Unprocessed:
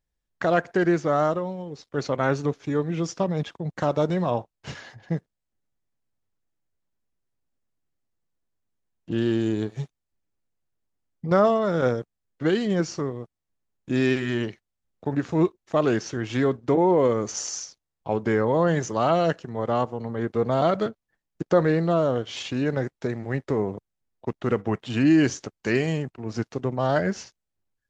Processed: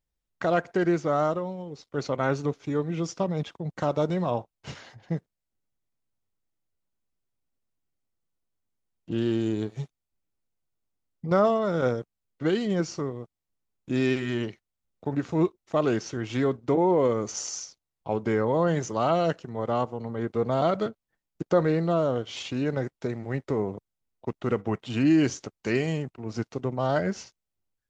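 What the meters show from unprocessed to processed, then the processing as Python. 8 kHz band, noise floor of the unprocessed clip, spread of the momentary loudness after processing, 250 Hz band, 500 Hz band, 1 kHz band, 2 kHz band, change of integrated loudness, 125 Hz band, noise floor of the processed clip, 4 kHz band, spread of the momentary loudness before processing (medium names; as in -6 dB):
no reading, -83 dBFS, 12 LU, -2.5 dB, -2.5 dB, -2.5 dB, -4.0 dB, -2.5 dB, -2.5 dB, -85 dBFS, -2.5 dB, 12 LU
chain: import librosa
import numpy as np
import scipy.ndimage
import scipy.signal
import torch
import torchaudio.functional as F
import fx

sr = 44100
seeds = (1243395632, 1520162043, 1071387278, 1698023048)

y = fx.notch(x, sr, hz=1700.0, q=12.0)
y = y * librosa.db_to_amplitude(-2.5)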